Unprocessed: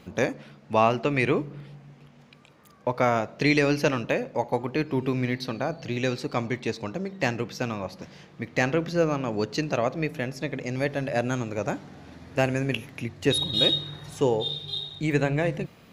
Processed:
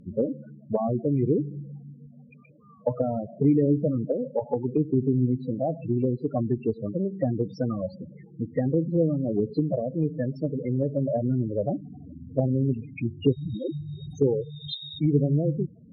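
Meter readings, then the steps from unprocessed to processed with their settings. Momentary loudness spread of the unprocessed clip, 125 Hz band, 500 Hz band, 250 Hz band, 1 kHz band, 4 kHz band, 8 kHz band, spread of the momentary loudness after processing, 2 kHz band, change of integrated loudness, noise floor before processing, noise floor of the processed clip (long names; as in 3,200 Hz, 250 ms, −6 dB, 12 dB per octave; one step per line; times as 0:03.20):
12 LU, +4.0 dB, −0.5 dB, +3.0 dB, −9.5 dB, below −10 dB, below −20 dB, 11 LU, below −20 dB, 0.0 dB, −53 dBFS, −51 dBFS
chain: spectral peaks only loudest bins 8
treble cut that deepens with the level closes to 370 Hz, closed at −24 dBFS
level +5 dB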